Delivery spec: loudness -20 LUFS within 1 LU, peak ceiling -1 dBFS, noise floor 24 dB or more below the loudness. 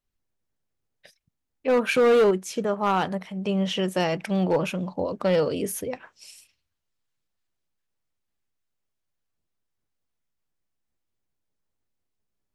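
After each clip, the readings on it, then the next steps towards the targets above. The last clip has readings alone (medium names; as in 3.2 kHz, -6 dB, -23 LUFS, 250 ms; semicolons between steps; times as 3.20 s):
clipped samples 0.9%; clipping level -15.0 dBFS; loudness -24.5 LUFS; peak level -15.0 dBFS; loudness target -20.0 LUFS
-> clip repair -15 dBFS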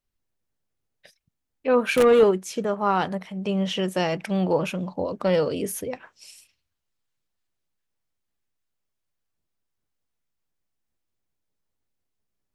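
clipped samples 0.0%; loudness -23.5 LUFS; peak level -6.0 dBFS; loudness target -20.0 LUFS
-> trim +3.5 dB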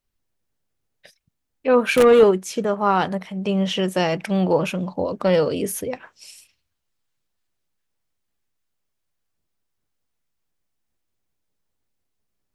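loudness -20.0 LUFS; peak level -2.5 dBFS; noise floor -77 dBFS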